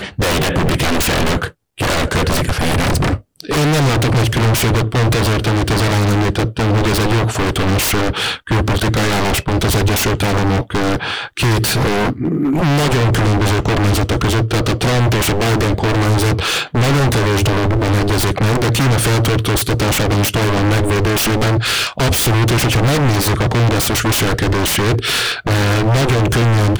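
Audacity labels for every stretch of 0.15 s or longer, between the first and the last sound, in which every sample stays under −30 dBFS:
1.500000	1.780000	silence
3.190000	3.400000	silence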